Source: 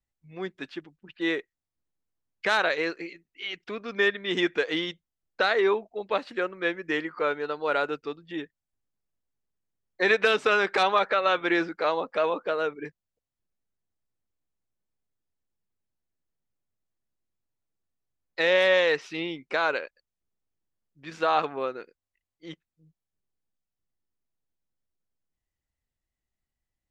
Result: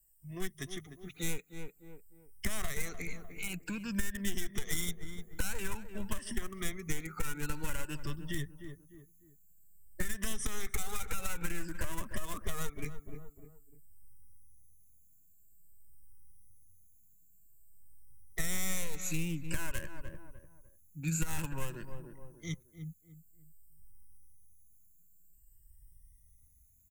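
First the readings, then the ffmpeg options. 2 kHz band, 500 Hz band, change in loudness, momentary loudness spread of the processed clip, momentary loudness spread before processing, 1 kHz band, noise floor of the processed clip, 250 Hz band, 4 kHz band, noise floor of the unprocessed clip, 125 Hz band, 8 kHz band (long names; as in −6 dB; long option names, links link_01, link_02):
−15.0 dB, −21.0 dB, −13.5 dB, 16 LU, 18 LU, −18.5 dB, −63 dBFS, −7.0 dB, −12.5 dB, below −85 dBFS, +7.5 dB, can't be measured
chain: -filter_complex "[0:a]afftfilt=real='re*pow(10,18/40*sin(2*PI*(1.3*log(max(b,1)*sr/1024/100)/log(2)-(0.51)*(pts-256)/sr)))':imag='im*pow(10,18/40*sin(2*PI*(1.3*log(max(b,1)*sr/1024/100)/log(2)-(0.51)*(pts-256)/sr)))':win_size=1024:overlap=0.75,aeval=exprs='clip(val(0),-1,0.0422)':channel_layout=same,lowshelf=frequency=140:gain=10,alimiter=limit=-11.5dB:level=0:latency=1:release=58,asubboost=boost=6.5:cutoff=190,acompressor=threshold=-14dB:ratio=6,asplit=2[link_01][link_02];[link_02]adelay=300,lowpass=frequency=1400:poles=1,volume=-13.5dB,asplit=2[link_03][link_04];[link_04]adelay=300,lowpass=frequency=1400:poles=1,volume=0.35,asplit=2[link_05][link_06];[link_06]adelay=300,lowpass=frequency=1400:poles=1,volume=0.35[link_07];[link_01][link_03][link_05][link_07]amix=inputs=4:normalize=0,acrossover=split=200|1400[link_08][link_09][link_10];[link_08]acompressor=threshold=-28dB:ratio=4[link_11];[link_09]acompressor=threshold=-44dB:ratio=4[link_12];[link_10]acompressor=threshold=-40dB:ratio=4[link_13];[link_11][link_12][link_13]amix=inputs=3:normalize=0,aexciter=amount=9.6:drive=8.9:freq=6600,volume=-2.5dB" -ar 48000 -c:a aac -b:a 192k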